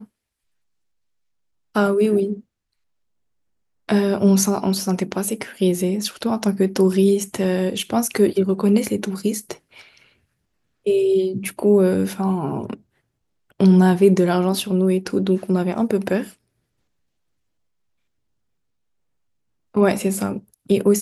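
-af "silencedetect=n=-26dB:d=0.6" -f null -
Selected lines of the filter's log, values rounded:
silence_start: 0.00
silence_end: 1.76 | silence_duration: 1.76
silence_start: 2.34
silence_end: 3.89 | silence_duration: 1.55
silence_start: 9.52
silence_end: 10.86 | silence_duration: 1.34
silence_start: 12.74
silence_end: 13.60 | silence_duration: 0.87
silence_start: 16.23
silence_end: 19.77 | silence_duration: 3.53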